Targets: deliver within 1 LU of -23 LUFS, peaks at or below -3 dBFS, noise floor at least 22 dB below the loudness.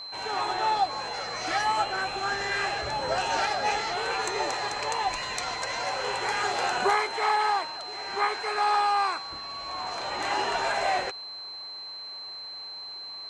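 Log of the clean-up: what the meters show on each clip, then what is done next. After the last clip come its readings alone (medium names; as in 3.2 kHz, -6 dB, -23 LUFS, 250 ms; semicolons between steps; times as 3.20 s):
steady tone 4.1 kHz; tone level -37 dBFS; loudness -28.0 LUFS; peak level -14.0 dBFS; loudness target -23.0 LUFS
-> band-stop 4.1 kHz, Q 30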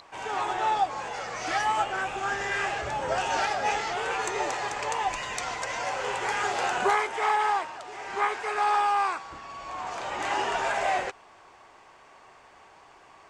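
steady tone not found; loudness -28.0 LUFS; peak level -14.5 dBFS; loudness target -23.0 LUFS
-> trim +5 dB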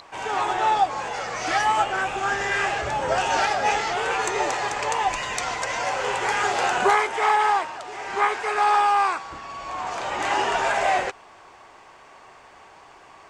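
loudness -23.0 LUFS; peak level -9.5 dBFS; noise floor -49 dBFS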